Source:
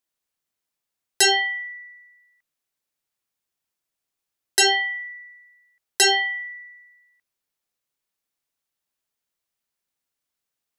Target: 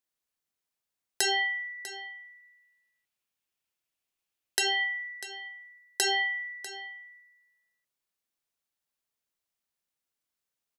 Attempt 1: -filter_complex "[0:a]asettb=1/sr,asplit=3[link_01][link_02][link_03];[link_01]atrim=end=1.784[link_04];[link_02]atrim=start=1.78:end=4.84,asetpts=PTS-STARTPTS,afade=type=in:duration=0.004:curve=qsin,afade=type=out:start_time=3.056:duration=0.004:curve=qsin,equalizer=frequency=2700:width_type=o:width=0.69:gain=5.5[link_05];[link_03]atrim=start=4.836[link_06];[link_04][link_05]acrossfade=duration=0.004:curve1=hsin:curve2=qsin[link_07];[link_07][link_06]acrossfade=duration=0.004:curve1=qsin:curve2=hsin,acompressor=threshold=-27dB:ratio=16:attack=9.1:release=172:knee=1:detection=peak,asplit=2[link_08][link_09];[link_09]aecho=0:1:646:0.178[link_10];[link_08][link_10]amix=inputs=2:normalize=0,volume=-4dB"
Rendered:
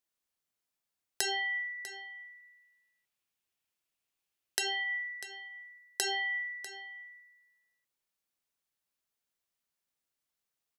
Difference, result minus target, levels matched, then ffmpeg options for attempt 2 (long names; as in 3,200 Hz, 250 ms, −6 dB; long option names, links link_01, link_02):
downward compressor: peak gain reduction +6 dB
-filter_complex "[0:a]asettb=1/sr,asplit=3[link_01][link_02][link_03];[link_01]atrim=end=1.784[link_04];[link_02]atrim=start=1.78:end=4.84,asetpts=PTS-STARTPTS,afade=type=in:duration=0.004:curve=qsin,afade=type=out:start_time=3.056:duration=0.004:curve=qsin,equalizer=frequency=2700:width_type=o:width=0.69:gain=5.5[link_05];[link_03]atrim=start=4.836[link_06];[link_04][link_05]acrossfade=duration=0.004:curve1=hsin:curve2=qsin[link_07];[link_07][link_06]acrossfade=duration=0.004:curve1=qsin:curve2=hsin,acompressor=threshold=-20.5dB:ratio=16:attack=9.1:release=172:knee=1:detection=peak,asplit=2[link_08][link_09];[link_09]aecho=0:1:646:0.178[link_10];[link_08][link_10]amix=inputs=2:normalize=0,volume=-4dB"